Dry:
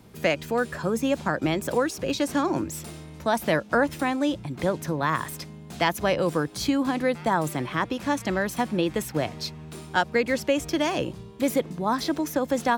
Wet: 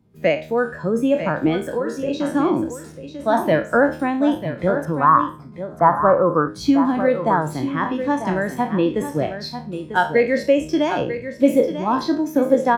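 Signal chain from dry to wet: spectral sustain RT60 0.49 s; 1.62–2.25 s: compression, threshold -23 dBFS, peak gain reduction 6 dB; 4.85–6.48 s: resonant high shelf 1.9 kHz -13 dB, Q 3; delay 944 ms -7 dB; spectral contrast expander 1.5:1; trim +4 dB

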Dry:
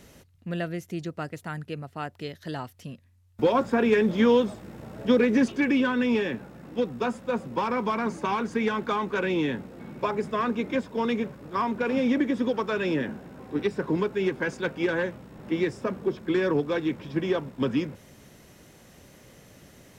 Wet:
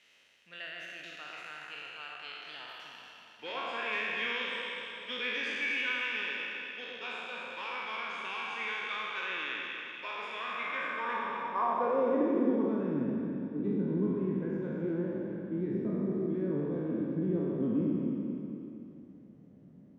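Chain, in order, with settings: spectral sustain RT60 2.58 s; band-pass sweep 2.7 kHz -> 200 Hz, 10.45–12.96 s; echo whose repeats swap between lows and highs 119 ms, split 1.3 kHz, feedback 73%, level -4.5 dB; trim -3 dB

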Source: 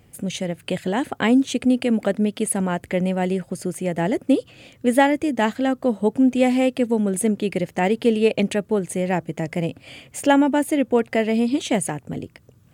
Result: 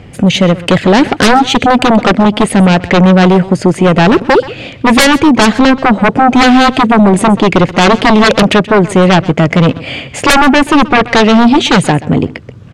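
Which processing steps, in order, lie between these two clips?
low-pass 3.9 kHz 12 dB/octave; sine folder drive 16 dB, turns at -3.5 dBFS; on a send: delay 130 ms -18 dB; on the sum: trim +1 dB

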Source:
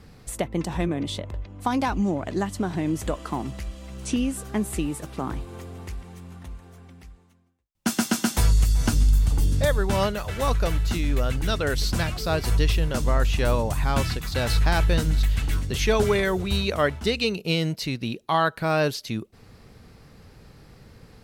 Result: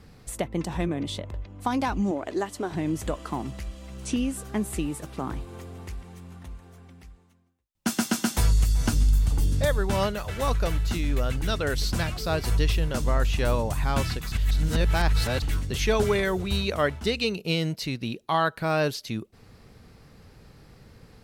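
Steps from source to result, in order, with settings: 2.11–2.72 s: resonant low shelf 240 Hz -10 dB, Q 1.5; 14.32–15.42 s: reverse; trim -2 dB

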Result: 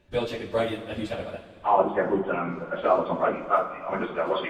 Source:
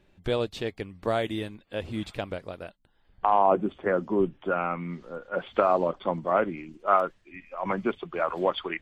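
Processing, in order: two-slope reverb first 0.46 s, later 4.7 s, from -18 dB, DRR -3.5 dB; plain phase-vocoder stretch 0.51×

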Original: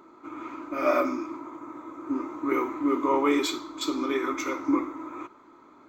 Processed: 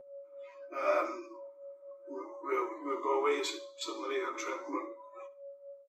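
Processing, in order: low-pass 11 kHz 24 dB/octave; spectral noise reduction 26 dB; steep high-pass 350 Hz 48 dB/octave; whistle 560 Hz -40 dBFS; flange 0.79 Hz, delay 7.7 ms, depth 4.7 ms, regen +21%; feedback delay 72 ms, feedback 28%, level -19 dB; endings held to a fixed fall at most 180 dB/s; trim -2.5 dB

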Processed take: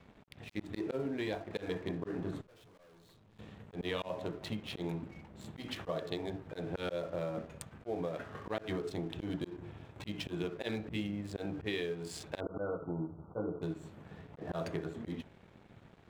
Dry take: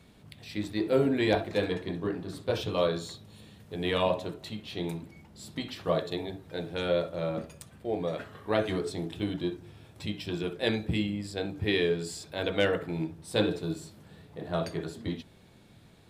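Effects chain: local Wiener filter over 9 samples; peaking EQ 980 Hz +2 dB 2.9 oct; slow attack 167 ms; compression 16:1, threshold -36 dBFS, peak gain reduction 18 dB; 2.41–3.39 s: valve stage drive 55 dB, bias 0.4; crossover distortion -59.5 dBFS; 12.40–13.62 s: brick-wall FIR low-pass 1.5 kHz; trim +3.5 dB

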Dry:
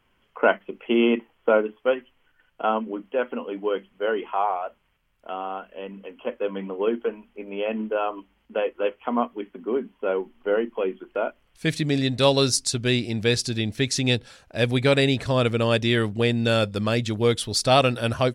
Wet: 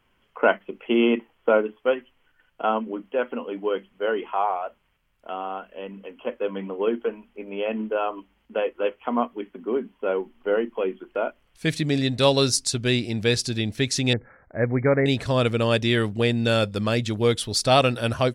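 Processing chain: 14.13–15.06 s: Chebyshev low-pass 2.2 kHz, order 8

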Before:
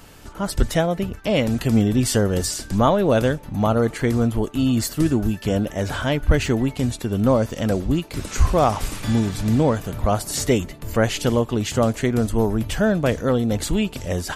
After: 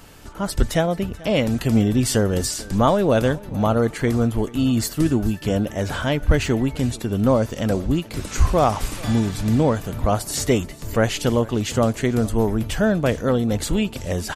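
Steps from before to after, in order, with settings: delay 436 ms -21.5 dB

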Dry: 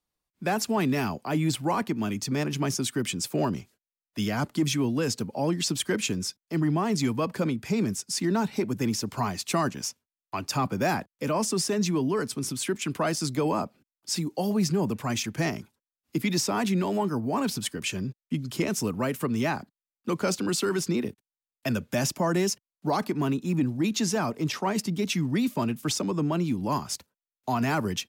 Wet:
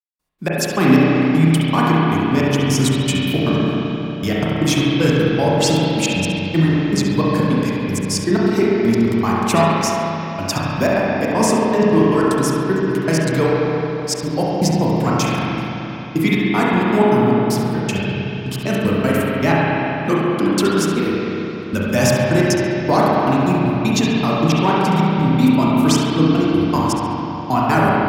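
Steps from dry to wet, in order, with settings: trance gate "..x.x.x.xx" 156 bpm -60 dB; thinning echo 69 ms, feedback 35%, level -12 dB; spring tank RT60 3.6 s, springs 31/43 ms, chirp 75 ms, DRR -6.5 dB; trim +7.5 dB

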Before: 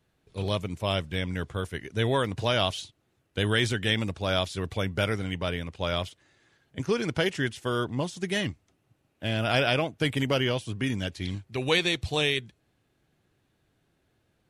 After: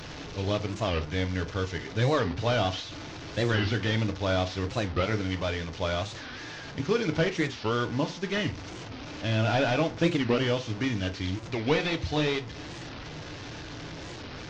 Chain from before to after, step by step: one-bit delta coder 32 kbps, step -35 dBFS; FDN reverb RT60 0.36 s, low-frequency decay 1×, high-frequency decay 0.75×, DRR 6.5 dB; warped record 45 rpm, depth 250 cents

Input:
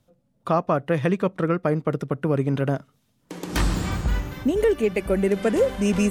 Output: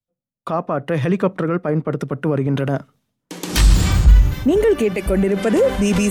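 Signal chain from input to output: loudness maximiser +19.5 dB; three bands expanded up and down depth 100%; trim -8.5 dB

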